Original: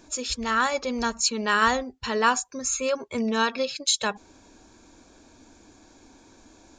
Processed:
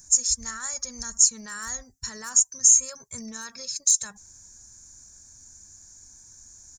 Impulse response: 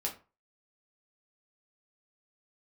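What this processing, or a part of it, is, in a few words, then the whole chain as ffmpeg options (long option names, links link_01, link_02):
clipper into limiter: -af "asoftclip=type=hard:threshold=-11.5dB,alimiter=limit=-19dB:level=0:latency=1:release=42,firequalizer=gain_entry='entry(140,0);entry(280,-21);entry(1800,-6);entry(2800,-22);entry(6000,14)':delay=0.05:min_phase=1"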